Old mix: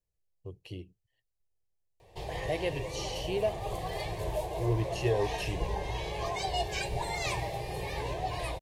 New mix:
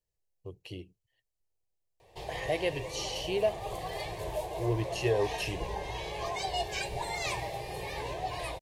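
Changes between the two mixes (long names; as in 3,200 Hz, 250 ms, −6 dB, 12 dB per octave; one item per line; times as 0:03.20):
speech +3.0 dB
master: add low-shelf EQ 270 Hz −6 dB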